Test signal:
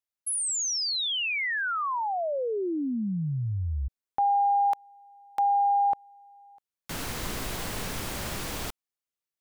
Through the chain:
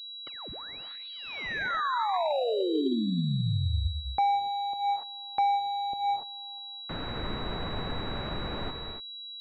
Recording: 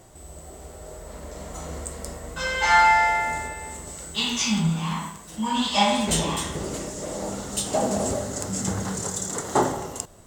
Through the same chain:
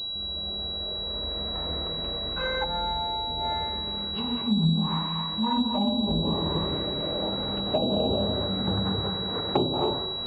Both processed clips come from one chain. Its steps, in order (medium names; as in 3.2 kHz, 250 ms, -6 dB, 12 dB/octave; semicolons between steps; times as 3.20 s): gated-style reverb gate 310 ms rising, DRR 4.5 dB; low-pass that closes with the level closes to 390 Hz, closed at -18 dBFS; class-D stage that switches slowly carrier 3.9 kHz